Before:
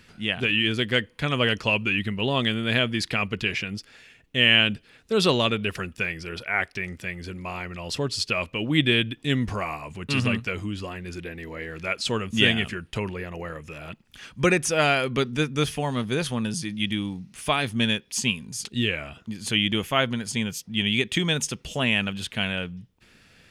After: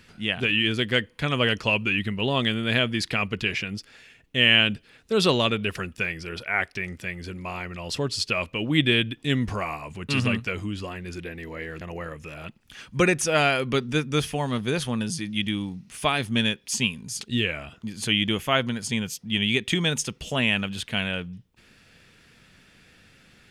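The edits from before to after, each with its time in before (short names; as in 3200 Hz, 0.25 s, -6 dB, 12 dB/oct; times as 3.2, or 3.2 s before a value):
11.81–13.25 cut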